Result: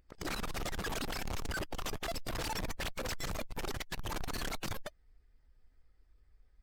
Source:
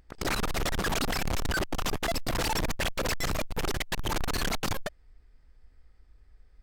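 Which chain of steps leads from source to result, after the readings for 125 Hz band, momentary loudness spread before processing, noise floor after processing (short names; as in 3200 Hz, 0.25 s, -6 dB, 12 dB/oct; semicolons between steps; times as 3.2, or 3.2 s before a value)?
-8.5 dB, 3 LU, -68 dBFS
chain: bin magnitudes rounded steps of 15 dB; gain -8 dB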